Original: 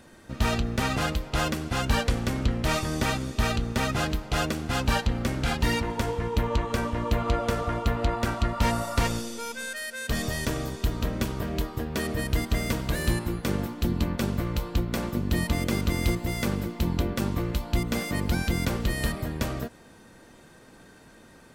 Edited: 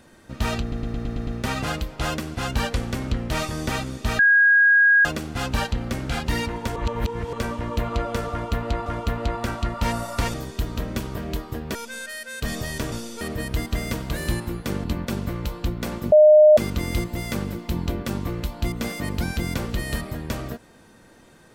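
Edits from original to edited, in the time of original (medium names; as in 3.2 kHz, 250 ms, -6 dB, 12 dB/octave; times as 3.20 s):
0.61 s: stutter 0.11 s, 7 plays
3.53–4.39 s: bleep 1.64 kHz -12 dBFS
6.10–6.67 s: reverse
7.65–8.20 s: loop, 2 plays
9.13–9.42 s: swap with 10.59–12.00 s
13.63–13.95 s: delete
15.23–15.68 s: bleep 610 Hz -8 dBFS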